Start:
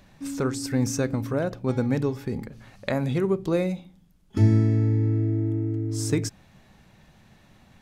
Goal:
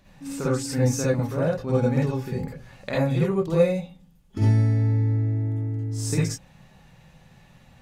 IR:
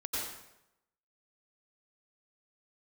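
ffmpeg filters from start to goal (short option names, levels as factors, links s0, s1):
-filter_complex "[1:a]atrim=start_sample=2205,afade=t=out:st=0.22:d=0.01,atrim=end_sample=10143,asetrate=83790,aresample=44100[s0];[0:a][s0]afir=irnorm=-1:irlink=0,volume=1.58"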